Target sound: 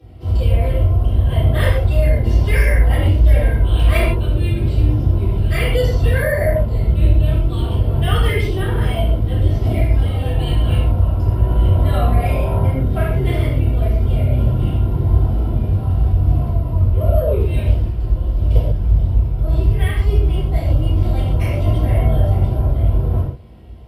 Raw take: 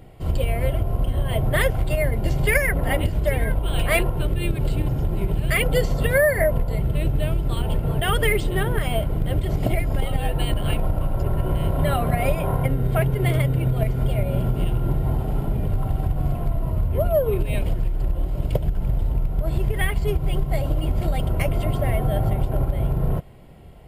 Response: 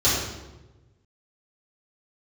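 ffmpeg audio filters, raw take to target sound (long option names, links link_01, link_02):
-filter_complex "[1:a]atrim=start_sample=2205,afade=type=out:start_time=0.19:duration=0.01,atrim=end_sample=8820,asetrate=37485,aresample=44100[link_01];[0:a][link_01]afir=irnorm=-1:irlink=0,volume=-17dB"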